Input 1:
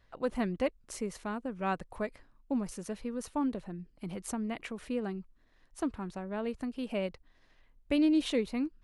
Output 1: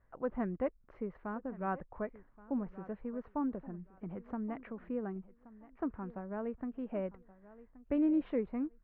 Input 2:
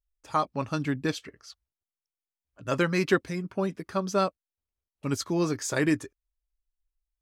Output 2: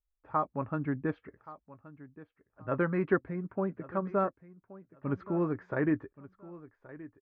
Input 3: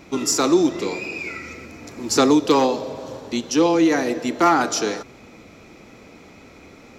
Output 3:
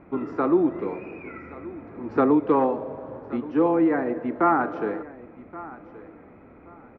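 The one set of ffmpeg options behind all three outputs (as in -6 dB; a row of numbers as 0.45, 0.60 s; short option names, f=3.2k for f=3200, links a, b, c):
-filter_complex "[0:a]lowpass=f=1.7k:w=0.5412,lowpass=f=1.7k:w=1.3066,asplit=2[a][b];[b]aecho=0:1:1125|2250:0.126|0.029[c];[a][c]amix=inputs=2:normalize=0,volume=-3.5dB"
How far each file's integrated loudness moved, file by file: -4.0, -4.0, -4.0 LU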